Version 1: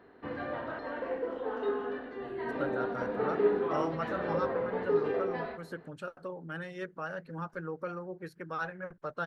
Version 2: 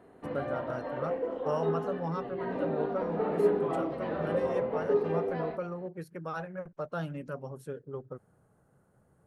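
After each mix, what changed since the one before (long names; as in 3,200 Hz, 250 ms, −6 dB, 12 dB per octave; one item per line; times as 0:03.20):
speech: entry −2.25 s
master: add graphic EQ with 15 bands 160 Hz +5 dB, 630 Hz +4 dB, 1,600 Hz −6 dB, 4,000 Hz −4 dB, 10,000 Hz +6 dB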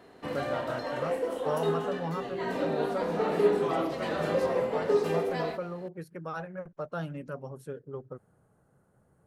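background: remove head-to-tape spacing loss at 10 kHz 40 dB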